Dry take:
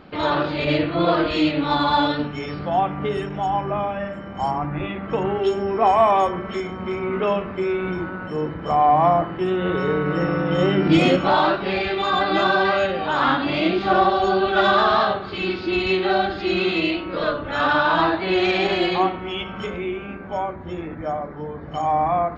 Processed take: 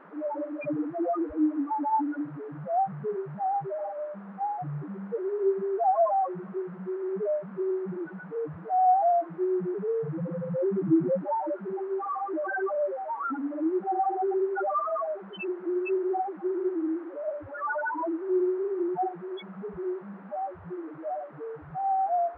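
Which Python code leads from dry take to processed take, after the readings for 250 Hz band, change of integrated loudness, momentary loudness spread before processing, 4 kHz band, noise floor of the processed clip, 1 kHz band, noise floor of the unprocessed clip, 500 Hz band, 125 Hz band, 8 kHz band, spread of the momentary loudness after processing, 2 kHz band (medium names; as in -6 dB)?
-7.5 dB, -8.5 dB, 11 LU, under -30 dB, -44 dBFS, -8.0 dB, -34 dBFS, -7.0 dB, -12.5 dB, no reading, 11 LU, -16.5 dB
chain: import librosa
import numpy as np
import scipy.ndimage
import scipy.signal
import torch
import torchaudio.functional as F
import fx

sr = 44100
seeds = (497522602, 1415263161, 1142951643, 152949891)

y = fx.spec_topn(x, sr, count=1)
y = fx.dmg_noise_band(y, sr, seeds[0], low_hz=290.0, high_hz=1500.0, level_db=-52.0)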